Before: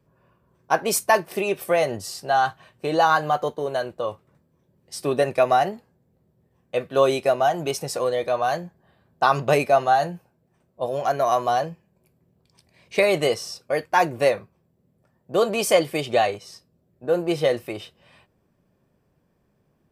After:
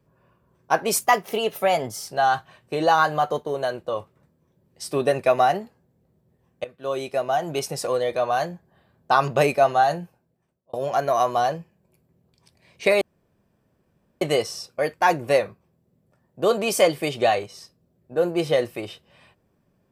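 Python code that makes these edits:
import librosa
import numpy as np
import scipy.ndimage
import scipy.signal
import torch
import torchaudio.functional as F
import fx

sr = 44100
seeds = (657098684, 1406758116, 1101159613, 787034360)

y = fx.edit(x, sr, fx.speed_span(start_s=1.01, length_s=1.18, speed=1.11),
    fx.fade_in_from(start_s=6.76, length_s=1.02, floor_db=-18.5),
    fx.fade_out_span(start_s=10.14, length_s=0.71),
    fx.insert_room_tone(at_s=13.13, length_s=1.2), tone=tone)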